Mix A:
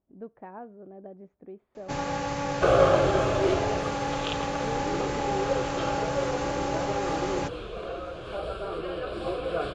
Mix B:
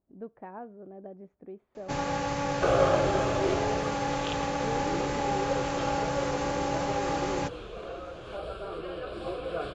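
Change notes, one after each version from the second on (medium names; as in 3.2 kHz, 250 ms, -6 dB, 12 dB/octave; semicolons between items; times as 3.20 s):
second sound -4.0 dB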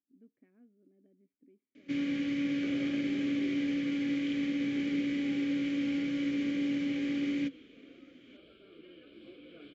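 speech -5.5 dB; first sound +9.0 dB; master: add vowel filter i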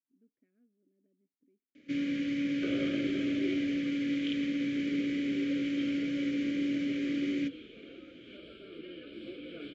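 speech -8.5 dB; second sound +8.0 dB; master: add Butterworth band-stop 910 Hz, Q 1.6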